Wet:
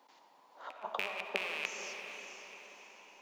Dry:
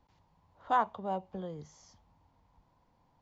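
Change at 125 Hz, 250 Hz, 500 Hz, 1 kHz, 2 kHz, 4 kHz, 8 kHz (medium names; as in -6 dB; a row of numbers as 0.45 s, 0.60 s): under -15 dB, -12.5 dB, -4.0 dB, -11.0 dB, +7.5 dB, +13.0 dB, no reading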